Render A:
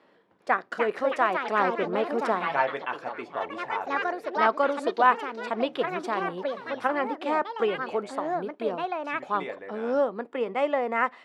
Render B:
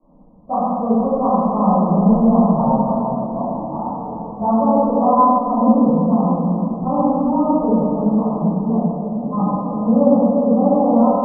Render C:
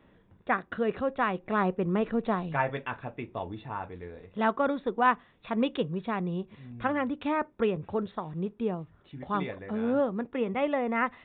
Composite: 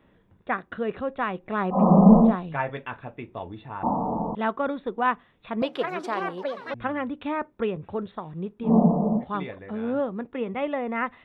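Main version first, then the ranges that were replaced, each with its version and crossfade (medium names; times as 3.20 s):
C
1.78–2.28 s: from B, crossfade 0.16 s
3.83–4.35 s: from B
5.62–6.74 s: from A
8.67–9.20 s: from B, crossfade 0.10 s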